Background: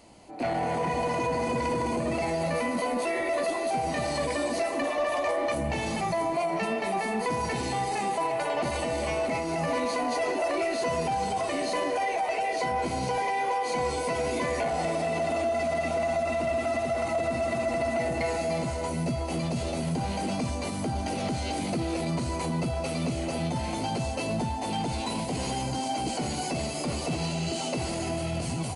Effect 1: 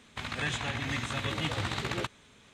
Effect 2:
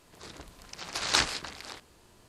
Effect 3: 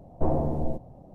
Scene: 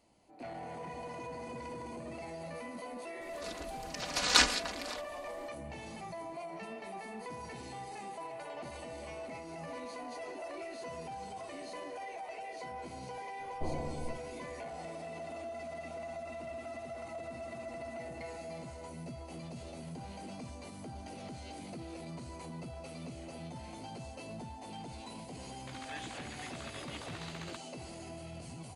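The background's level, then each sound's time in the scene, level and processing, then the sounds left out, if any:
background -15.5 dB
3.21 add 2 -1.5 dB + comb 4.1 ms, depth 89%
13.4 add 3 -13 dB
25.5 add 1 -12.5 dB + bell 150 Hz -11.5 dB

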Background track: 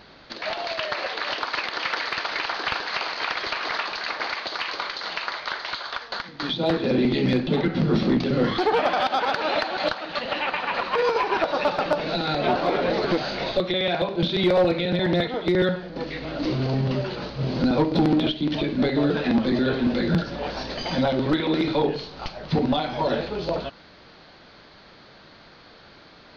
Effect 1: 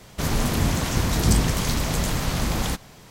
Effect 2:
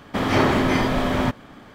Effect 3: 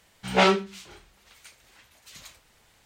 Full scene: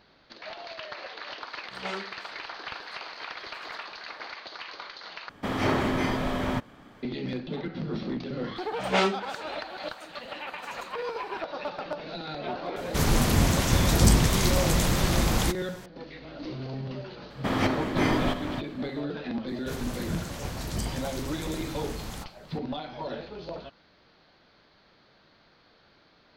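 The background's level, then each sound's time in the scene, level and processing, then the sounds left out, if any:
background track -11.5 dB
1.47 add 3 -17 dB
5.29 replace with 2 -7 dB
8.56 add 3 -4.5 dB
12.76 add 1
17.3 add 2 -4.5 dB + chopper 1.5 Hz, depth 60%, duty 55%
19.48 add 1 -13 dB

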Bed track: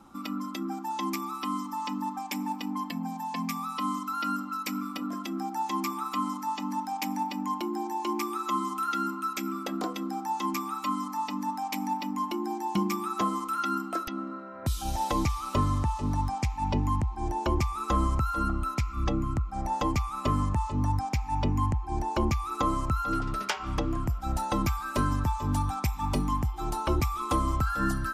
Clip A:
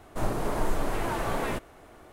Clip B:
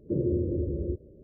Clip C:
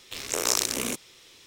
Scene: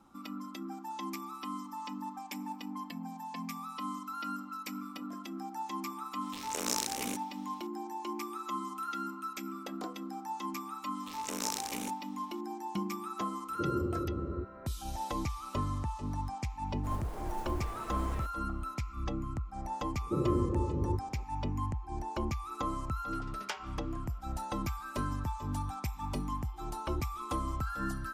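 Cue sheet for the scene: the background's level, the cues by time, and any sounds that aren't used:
bed track -8 dB
6.21 add C -9 dB
10.95 add C -12 dB
13.49 add B -6.5 dB
16.68 add A -15 dB + modulation noise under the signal 22 dB
20.01 add B -3.5 dB

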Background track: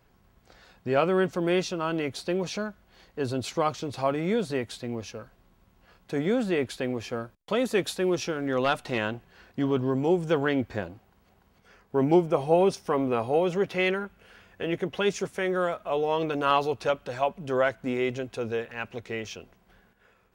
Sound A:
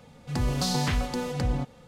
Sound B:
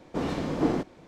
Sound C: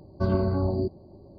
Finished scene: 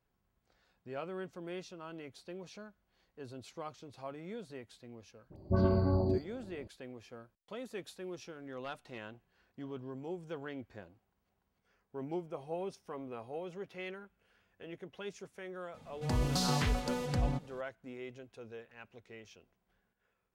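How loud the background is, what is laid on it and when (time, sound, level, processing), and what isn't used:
background track -18 dB
5.3 add C -4 dB + dispersion highs, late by 63 ms, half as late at 1200 Hz
15.74 add A -5 dB
not used: B

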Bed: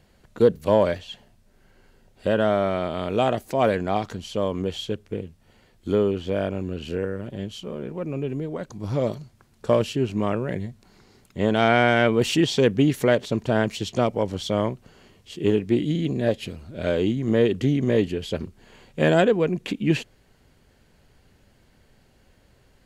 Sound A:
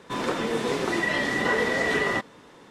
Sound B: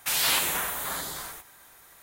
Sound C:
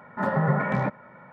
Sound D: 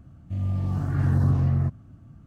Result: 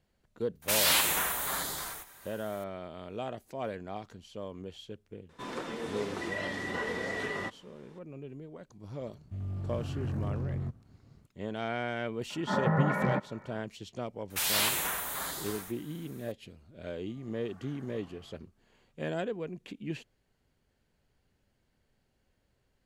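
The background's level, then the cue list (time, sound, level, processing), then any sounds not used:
bed -16 dB
0.62 add B -1 dB
5.29 add A -11 dB
9.01 add D -16 dB + sample leveller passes 2
12.3 add C -4 dB
14.3 add B -4 dB
16.68 add D -15.5 dB + HPF 660 Hz

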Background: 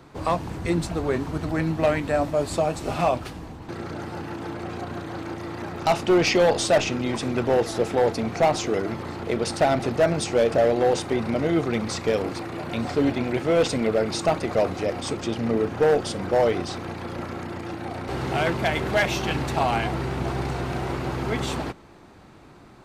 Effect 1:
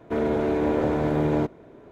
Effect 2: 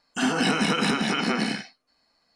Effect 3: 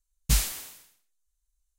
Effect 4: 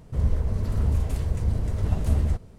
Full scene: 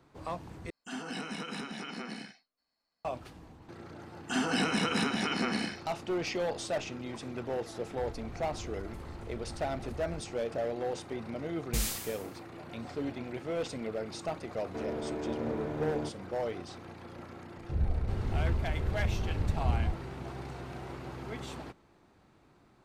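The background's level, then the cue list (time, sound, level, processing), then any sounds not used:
background -14 dB
0.7 replace with 2 -16 dB
4.13 add 2 -6.5 dB
7.84 add 4 -10.5 dB + compressor 4:1, threshold -32 dBFS
11.44 add 3 -3 dB + limiter -17.5 dBFS
14.63 add 1 -13 dB
17.57 add 4 -7 dB + steep low-pass 640 Hz

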